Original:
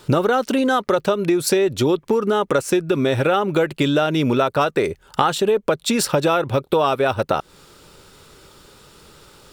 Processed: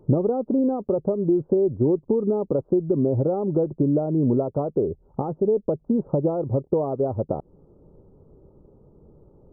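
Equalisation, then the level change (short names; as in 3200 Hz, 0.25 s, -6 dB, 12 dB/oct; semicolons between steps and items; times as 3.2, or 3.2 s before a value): Gaussian blur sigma 14 samples; 0.0 dB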